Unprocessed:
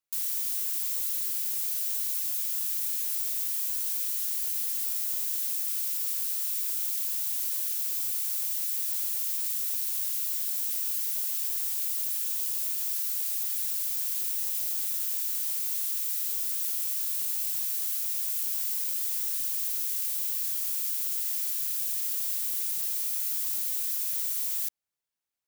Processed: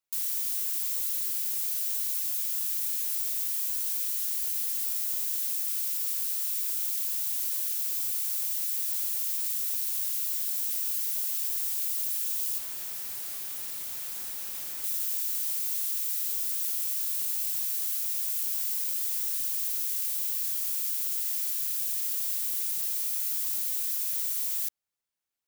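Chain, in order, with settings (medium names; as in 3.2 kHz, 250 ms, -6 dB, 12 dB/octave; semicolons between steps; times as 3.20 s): 12.58–14.84 s: overload inside the chain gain 34.5 dB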